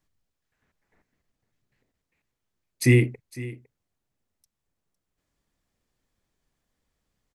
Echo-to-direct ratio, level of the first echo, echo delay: −17.5 dB, −17.5 dB, 506 ms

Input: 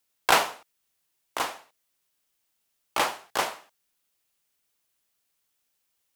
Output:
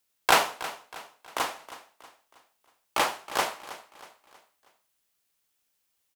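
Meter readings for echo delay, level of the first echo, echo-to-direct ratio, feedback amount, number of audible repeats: 319 ms, −15.5 dB, −14.5 dB, 43%, 3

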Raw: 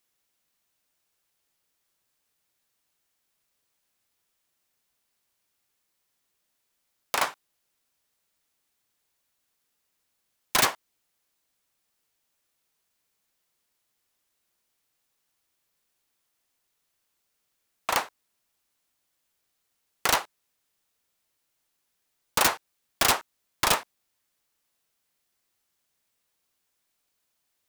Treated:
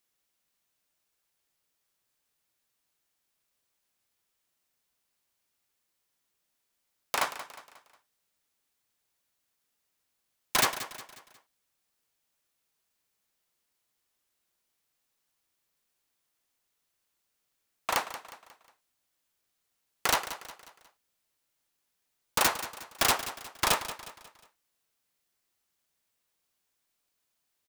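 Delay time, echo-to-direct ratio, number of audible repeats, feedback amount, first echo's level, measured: 180 ms, −12.0 dB, 4, 43%, −13.0 dB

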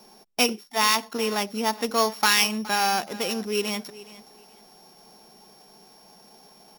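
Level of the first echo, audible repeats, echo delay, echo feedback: −18.5 dB, 2, 418 ms, 25%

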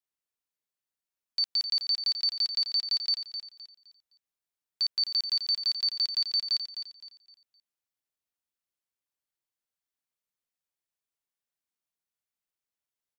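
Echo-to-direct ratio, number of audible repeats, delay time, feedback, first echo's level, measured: −8.5 dB, 3, 258 ms, 31%, −9.0 dB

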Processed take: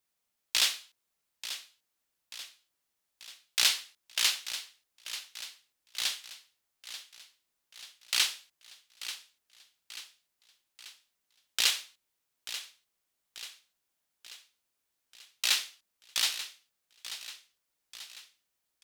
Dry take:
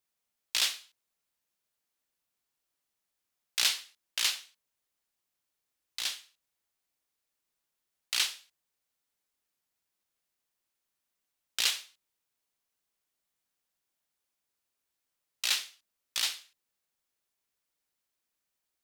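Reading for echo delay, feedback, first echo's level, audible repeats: 887 ms, 54%, −12.5 dB, 5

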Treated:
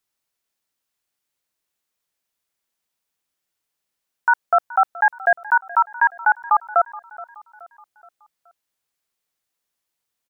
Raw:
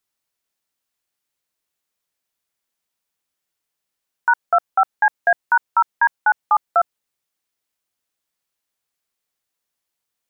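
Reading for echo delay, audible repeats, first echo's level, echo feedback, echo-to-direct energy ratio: 424 ms, 3, −19.5 dB, 47%, −18.5 dB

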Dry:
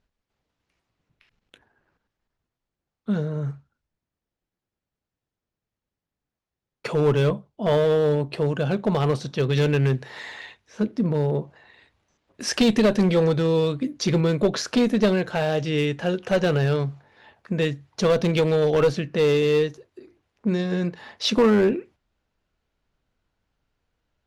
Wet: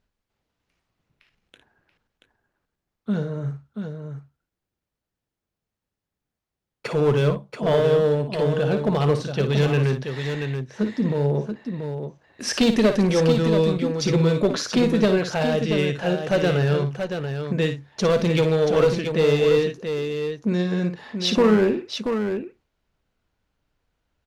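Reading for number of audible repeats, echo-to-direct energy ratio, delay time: 2, −5.0 dB, 56 ms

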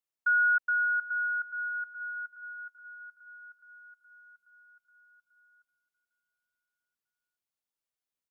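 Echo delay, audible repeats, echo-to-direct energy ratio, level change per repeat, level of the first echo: 583 ms, 3, −16.5 dB, −5.0 dB, −18.0 dB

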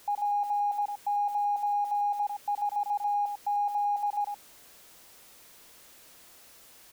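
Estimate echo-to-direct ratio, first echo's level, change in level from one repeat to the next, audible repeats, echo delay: −6.5 dB, −6.5 dB, repeats not evenly spaced, 1, 99 ms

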